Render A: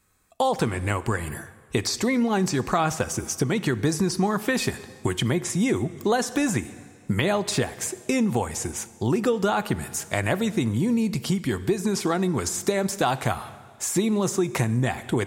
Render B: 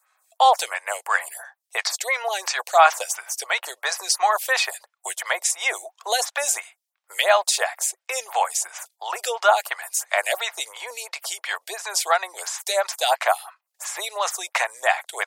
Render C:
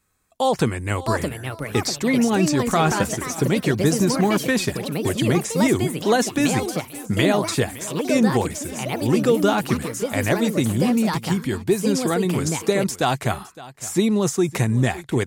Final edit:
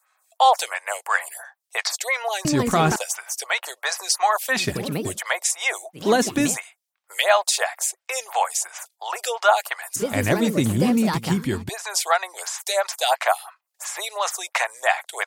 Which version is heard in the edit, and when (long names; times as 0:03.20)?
B
0:02.45–0:02.96: punch in from C
0:04.60–0:05.07: punch in from C, crossfade 0.24 s
0:06.01–0:06.49: punch in from C, crossfade 0.16 s
0:09.96–0:11.69: punch in from C
not used: A